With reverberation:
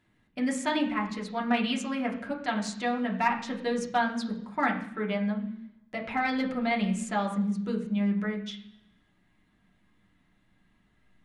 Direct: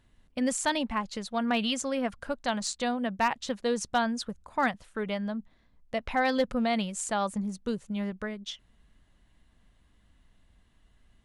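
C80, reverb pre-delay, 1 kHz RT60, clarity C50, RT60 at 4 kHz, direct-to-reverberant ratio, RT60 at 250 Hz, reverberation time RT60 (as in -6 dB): 12.0 dB, 3 ms, 0.70 s, 9.5 dB, 0.95 s, -2.0 dB, 0.85 s, 0.70 s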